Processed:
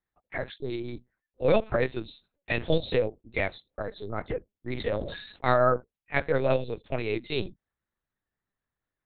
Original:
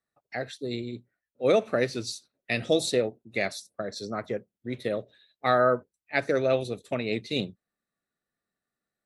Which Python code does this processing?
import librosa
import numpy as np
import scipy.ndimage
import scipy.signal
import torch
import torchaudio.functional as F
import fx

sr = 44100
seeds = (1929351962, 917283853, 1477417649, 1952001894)

y = fx.lpc_vocoder(x, sr, seeds[0], excitation='pitch_kept', order=8)
y = fx.sustainer(y, sr, db_per_s=61.0, at=(4.69, 5.51), fade=0.02)